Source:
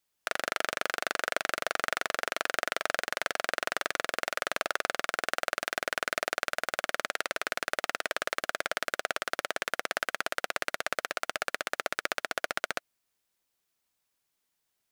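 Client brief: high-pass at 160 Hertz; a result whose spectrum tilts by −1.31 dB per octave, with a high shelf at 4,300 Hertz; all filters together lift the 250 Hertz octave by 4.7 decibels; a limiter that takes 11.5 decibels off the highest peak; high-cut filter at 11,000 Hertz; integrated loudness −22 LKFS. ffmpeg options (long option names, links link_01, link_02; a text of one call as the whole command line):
ffmpeg -i in.wav -af "highpass=160,lowpass=11000,equalizer=frequency=250:width_type=o:gain=7,highshelf=frequency=4300:gain=-4,volume=19.5dB,alimiter=limit=-0.5dB:level=0:latency=1" out.wav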